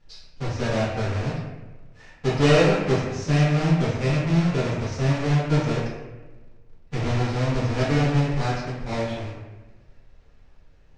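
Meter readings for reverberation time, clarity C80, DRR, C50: 1.2 s, 3.0 dB, -8.5 dB, 0.5 dB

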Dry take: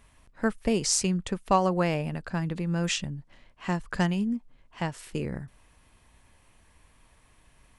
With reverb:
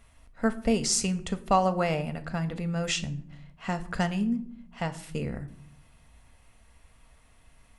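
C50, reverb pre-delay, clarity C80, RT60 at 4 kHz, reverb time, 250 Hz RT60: 16.0 dB, 4 ms, 19.5 dB, 0.40 s, 0.60 s, 1.0 s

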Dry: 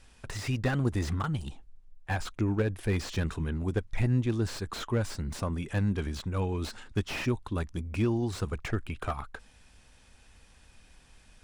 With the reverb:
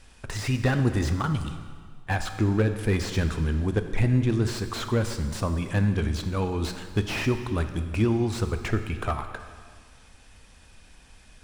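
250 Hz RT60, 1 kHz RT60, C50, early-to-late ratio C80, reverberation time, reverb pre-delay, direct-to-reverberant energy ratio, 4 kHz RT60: 1.8 s, 1.8 s, 9.0 dB, 10.0 dB, 1.8 s, 8 ms, 8.0 dB, 1.7 s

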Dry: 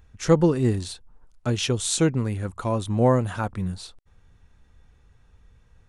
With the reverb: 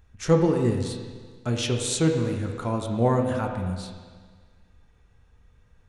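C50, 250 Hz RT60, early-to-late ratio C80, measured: 4.5 dB, 1.6 s, 6.0 dB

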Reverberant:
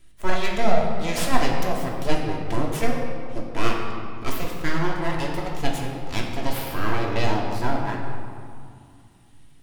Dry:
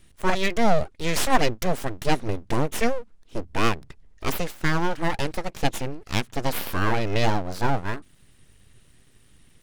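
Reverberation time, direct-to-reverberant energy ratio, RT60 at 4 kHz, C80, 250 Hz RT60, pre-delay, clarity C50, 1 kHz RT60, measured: 2.3 s, -1.5 dB, 1.4 s, 4.0 dB, 3.0 s, 3 ms, 2.5 dB, 2.4 s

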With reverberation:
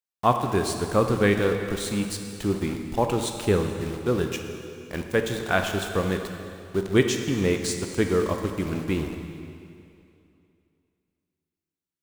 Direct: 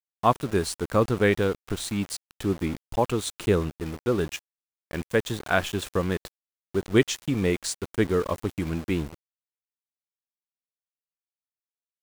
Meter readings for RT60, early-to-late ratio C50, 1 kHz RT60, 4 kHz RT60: 2.6 s, 6.0 dB, 2.6 s, 2.4 s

